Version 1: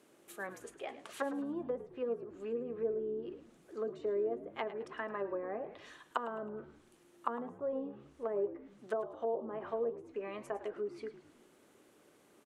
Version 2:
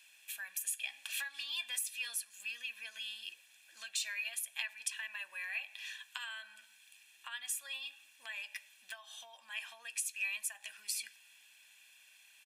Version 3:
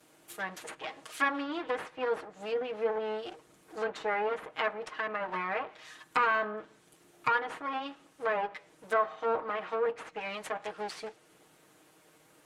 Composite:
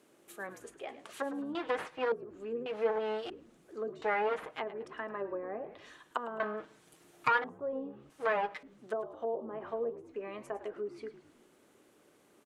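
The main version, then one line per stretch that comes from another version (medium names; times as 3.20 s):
1
1.55–2.12 s: from 3
2.66–3.30 s: from 3
4.02–4.59 s: from 3
6.40–7.44 s: from 3
8.10–8.63 s: from 3
not used: 2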